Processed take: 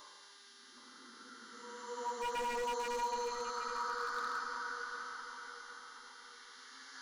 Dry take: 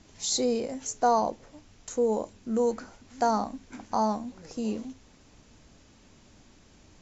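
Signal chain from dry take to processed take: LFO high-pass sine 5.6 Hz 780–2600 Hz; Paulstretch 8.6×, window 0.25 s, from 2.32; buzz 400 Hz, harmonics 27, -60 dBFS 0 dB/oct; fixed phaser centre 2500 Hz, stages 6; wavefolder -35 dBFS; on a send: darkening echo 0.769 s, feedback 43%, low-pass 2000 Hz, level -6 dB; on the sum: gain +3 dB

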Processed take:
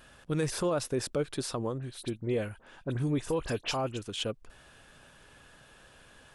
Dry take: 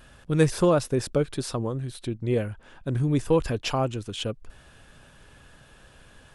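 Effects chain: low shelf 190 Hz -8 dB; limiter -20 dBFS, peak gain reduction 9.5 dB; 1.78–4.02 dispersion highs, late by 42 ms, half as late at 2700 Hz; gain -1.5 dB

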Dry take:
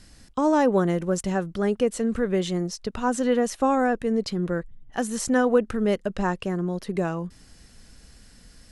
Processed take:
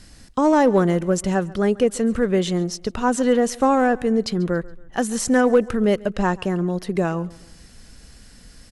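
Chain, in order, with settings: in parallel at -3.5 dB: overloaded stage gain 15 dB; on the sum: feedback echo 0.139 s, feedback 40%, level -22 dB

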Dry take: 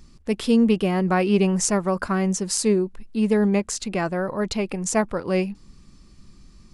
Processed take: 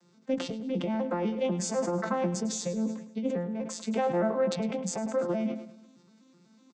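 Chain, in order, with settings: arpeggiated vocoder major triad, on F3, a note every 0.124 s; HPF 860 Hz 6 dB/oct; bell 2700 Hz -5 dB 2.7 oct; negative-ratio compressor -36 dBFS, ratio -1; doubler 15 ms -6 dB; feedback echo 0.105 s, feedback 49%, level -14 dB; sustainer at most 91 dB/s; gain +6 dB

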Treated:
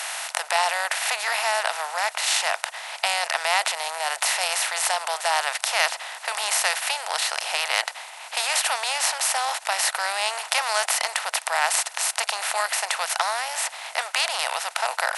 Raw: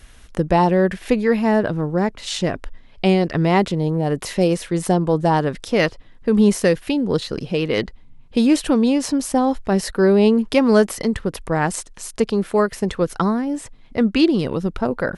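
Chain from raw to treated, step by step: per-bin compression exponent 0.4; elliptic high-pass 680 Hz, stop band 60 dB; tilt +3 dB/oct; gain -6.5 dB

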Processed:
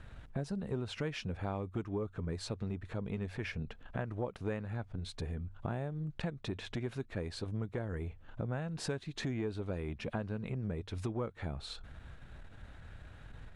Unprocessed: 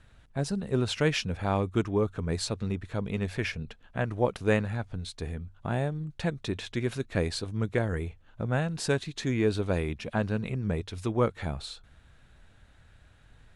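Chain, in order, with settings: high shelf 3400 Hz -10 dB; compressor 6:1, threshold -42 dBFS, peak gain reduction 21 dB; core saturation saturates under 240 Hz; gain +7.5 dB

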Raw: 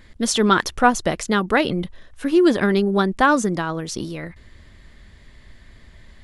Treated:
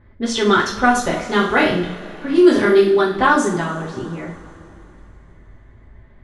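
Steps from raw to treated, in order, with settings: 1.14–2.97 flutter echo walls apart 5.7 m, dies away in 0.33 s; low-pass opened by the level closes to 1100 Hz, open at -12.5 dBFS; two-slope reverb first 0.4 s, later 3.4 s, from -20 dB, DRR -5.5 dB; gain -4 dB

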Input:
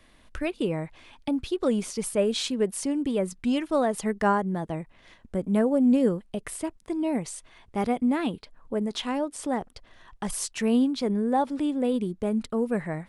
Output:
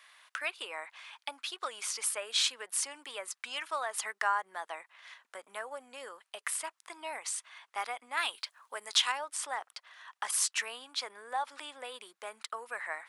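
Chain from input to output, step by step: 8.17–9.12 high shelf 2700 Hz +10.5 dB; compressor, threshold -24 dBFS, peak gain reduction 7 dB; ladder high-pass 880 Hz, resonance 25%; gain +8.5 dB

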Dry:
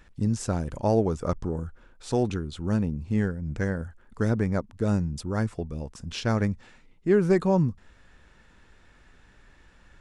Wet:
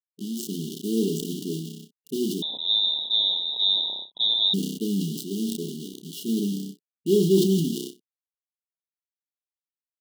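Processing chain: block floating point 3-bit; high shelf 2600 Hz -11 dB; notches 60/120/180/240/300/360 Hz; AGC gain up to 8 dB; bit-crush 5-bit; brick-wall FIR band-stop 440–2800 Hz; flutter echo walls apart 5.3 m, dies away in 0.22 s; 2.42–4.54 inverted band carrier 3800 Hz; brick-wall FIR high-pass 160 Hz; sustainer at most 49 dB/s; gain -6 dB

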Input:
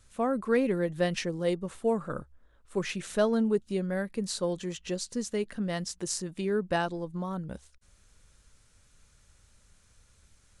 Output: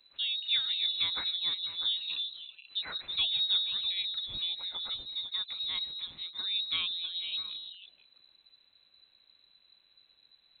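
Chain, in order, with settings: delay with a stepping band-pass 0.162 s, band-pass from 170 Hz, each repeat 1.4 oct, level -0.5 dB; inverted band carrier 4000 Hz; gain -5.5 dB

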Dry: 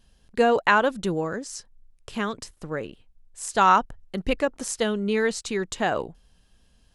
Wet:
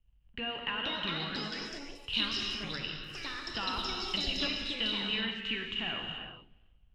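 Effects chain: de-esser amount 100%; bell 510 Hz -14.5 dB 1.5 oct; compressor 6:1, threshold -38 dBFS, peak gain reduction 14.5 dB; dark delay 0.35 s, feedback 47%, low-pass 2200 Hz, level -22.5 dB; backlash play -56.5 dBFS; synth low-pass 2900 Hz, resonance Q 12; non-linear reverb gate 0.45 s flat, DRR 0.5 dB; echoes that change speed 0.574 s, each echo +5 st, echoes 2; three-band expander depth 40%; gain -1.5 dB

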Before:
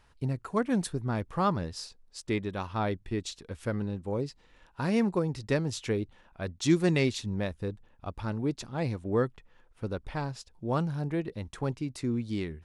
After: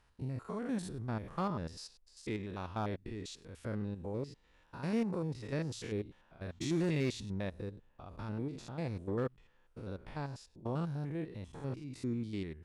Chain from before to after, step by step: stepped spectrum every 0.1 s; one-sided clip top -24.5 dBFS, bottom -18 dBFS; gain -5.5 dB

